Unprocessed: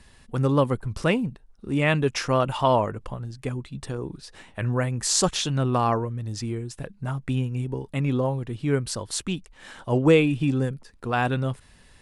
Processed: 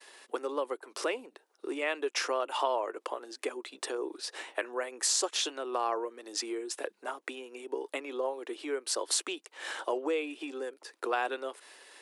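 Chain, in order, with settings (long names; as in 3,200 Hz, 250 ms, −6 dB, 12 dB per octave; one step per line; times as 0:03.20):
downward expander −50 dBFS
downward compressor 12 to 1, threshold −31 dBFS, peak gain reduction 19 dB
Butterworth high-pass 330 Hz 48 dB per octave
level +5.5 dB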